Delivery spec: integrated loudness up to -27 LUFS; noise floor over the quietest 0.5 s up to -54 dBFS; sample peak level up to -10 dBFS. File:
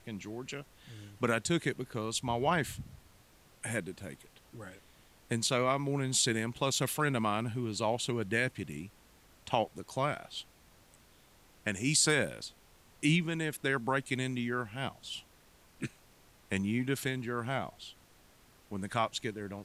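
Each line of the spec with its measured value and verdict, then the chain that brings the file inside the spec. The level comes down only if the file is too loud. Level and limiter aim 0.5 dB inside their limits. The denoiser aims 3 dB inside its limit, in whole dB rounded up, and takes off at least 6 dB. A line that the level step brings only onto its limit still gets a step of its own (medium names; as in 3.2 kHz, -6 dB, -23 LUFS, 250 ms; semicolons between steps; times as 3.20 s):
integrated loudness -33.0 LUFS: pass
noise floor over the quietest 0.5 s -62 dBFS: pass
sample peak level -12.5 dBFS: pass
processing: none needed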